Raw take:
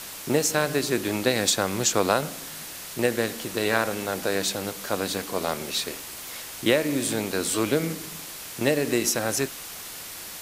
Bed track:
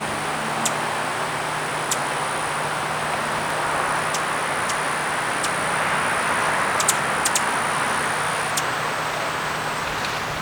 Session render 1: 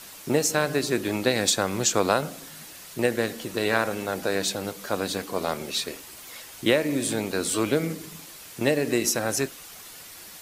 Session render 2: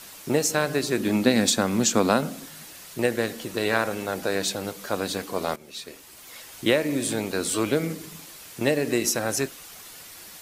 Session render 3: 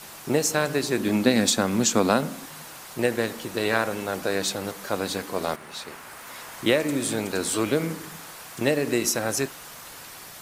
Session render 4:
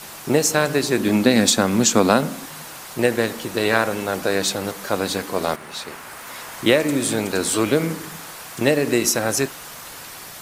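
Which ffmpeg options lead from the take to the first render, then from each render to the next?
-af "afftdn=nr=7:nf=-39"
-filter_complex "[0:a]asettb=1/sr,asplit=3[a][b][c];[a]atrim=end=0.994[d];[b]atrim=start=0.99:end=2.46,asetpts=PTS-STARTPTS,afade=t=in:d=0.004:c=qsin,afade=t=out:st=1.466:d=0.004:c=qsin,equalizer=f=230:t=o:w=0.46:g=12.5[e];[c]atrim=start=2.456[f];[d][e]acrossfade=d=0.004:c1=hsin:c2=qsin[g];[g][f]acrossfade=d=0.004:c1=qsin:c2=hsin,asplit=2[h][i];[h]atrim=end=5.56,asetpts=PTS-STARTPTS,afade=t=out:st=5.556:d=0.004:c=hsin:silence=0.149624[j];[i]atrim=start=5.56,asetpts=PTS-STARTPTS,afade=t=in:d=0.98:silence=0.149624[k];[j][k]concat=n=2:v=0:a=1"
-filter_complex "[1:a]volume=-22dB[a];[0:a][a]amix=inputs=2:normalize=0"
-af "volume=5dB,alimiter=limit=-1dB:level=0:latency=1"

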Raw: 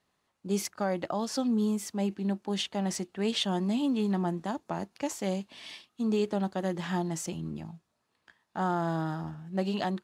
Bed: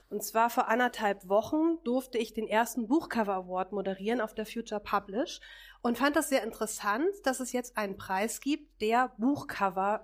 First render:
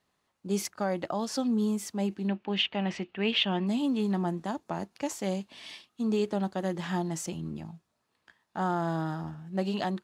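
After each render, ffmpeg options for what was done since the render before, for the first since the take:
-filter_complex "[0:a]asettb=1/sr,asplit=3[a][b][c];[a]atrim=end=2.284[d];[b]atrim=start=2.28:end=3.67,asetpts=PTS-STARTPTS,afade=t=in:d=0.004:c=qsin,afade=t=out:st=1.386:d=0.004:c=qsin,lowpass=f=2.7k:t=q:w=3.3[e];[c]atrim=start=3.666[f];[d][e]acrossfade=d=0.004:c1=hsin:c2=qsin[g];[g][f]acrossfade=d=0.004:c1=qsin:c2=hsin"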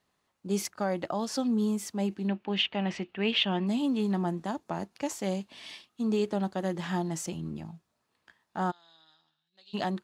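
-filter_complex "[0:a]asplit=3[a][b][c];[a]afade=t=out:st=8.7:d=0.02[d];[b]bandpass=f=3.8k:t=q:w=8.4,afade=t=in:st=8.7:d=0.02,afade=t=out:st=9.73:d=0.02[e];[c]afade=t=in:st=9.73:d=0.02[f];[d][e][f]amix=inputs=3:normalize=0"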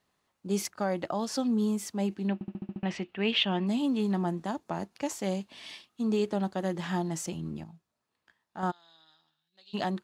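-filter_complex "[0:a]asplit=10[a][b][c][d][e][f][g][h][i][j];[a]atrim=end=2.412[k];[b]atrim=start=2.338:end=2.412[l];[c]atrim=start=2.338:end=2.412[m];[d]atrim=start=2.338:end=2.412[n];[e]atrim=start=2.338:end=2.412[o];[f]atrim=start=2.338:end=2.412[p];[g]atrim=start=2.338:end=2.412[q];[h]atrim=start=2.828:end=7.642[r];[i]atrim=start=7.638:end=8.632,asetpts=PTS-STARTPTS,volume=-6dB[s];[j]atrim=start=8.628[t];[k][l]acrossfade=d=0.004:c1=hsin:c2=hsin[u];[u][m]acrossfade=d=0.004:c1=hsin:c2=hsin[v];[v][n]acrossfade=d=0.004:c1=hsin:c2=hsin[w];[w][o]acrossfade=d=0.004:c1=hsin:c2=hsin[x];[x][p]acrossfade=d=0.004:c1=hsin:c2=hsin[y];[y][q]acrossfade=d=0.004:c1=hsin:c2=hsin[z];[z][r]acrossfade=d=0.004:c1=hsin:c2=hsin[aa];[aa][s]acrossfade=d=0.004:c1=hsin:c2=hsin[ab];[ab][t]acrossfade=d=0.004:c1=hsin:c2=hsin"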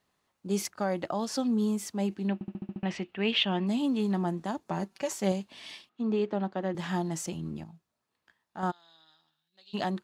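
-filter_complex "[0:a]asettb=1/sr,asplit=3[a][b][c];[a]atrim=end=4.694[d];[b]atrim=start=4.69:end=5.32,asetpts=PTS-STARTPTS,afade=t=in:d=0.004:c=qsin,afade=t=out:st=0.626:d=0.004:c=qsin,aecho=1:1:5.2:0.65,atrim=end_sample=27783[e];[c]atrim=start=5.316[f];[d][e]acrossfade=d=0.004:c1=hsin:c2=qsin[g];[g][f]acrossfade=d=0.004:c1=qsin:c2=hsin,asettb=1/sr,asplit=3[h][i][j];[h]atrim=end=5.894[k];[i]atrim=start=5.89:end=6.75,asetpts=PTS-STARTPTS,afade=t=in:d=0.004:c=qsin,afade=t=out:st=0.856:d=0.004:c=qsin,highpass=160,lowpass=2.9k[l];[j]atrim=start=6.746[m];[k][l]acrossfade=d=0.004:c1=hsin:c2=qsin[n];[n][m]acrossfade=d=0.004:c1=qsin:c2=hsin"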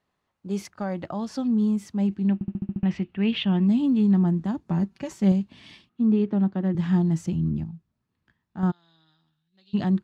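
-af "lowpass=f=2.7k:p=1,asubboost=boost=7.5:cutoff=210"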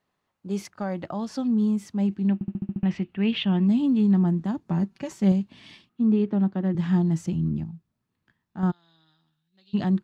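-af "equalizer=f=60:w=1.7:g=-7"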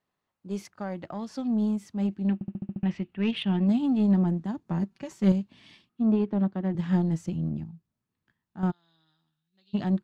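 -af "aeval=exprs='0.282*(cos(1*acos(clip(val(0)/0.282,-1,1)))-cos(1*PI/2))+0.0355*(cos(3*acos(clip(val(0)/0.282,-1,1)))-cos(3*PI/2))+0.00398*(cos(7*acos(clip(val(0)/0.282,-1,1)))-cos(7*PI/2))':c=same"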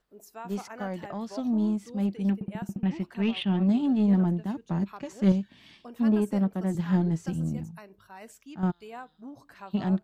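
-filter_complex "[1:a]volume=-15.5dB[a];[0:a][a]amix=inputs=2:normalize=0"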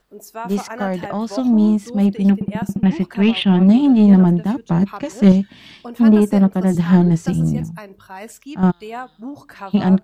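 -af "volume=12dB,alimiter=limit=-1dB:level=0:latency=1"

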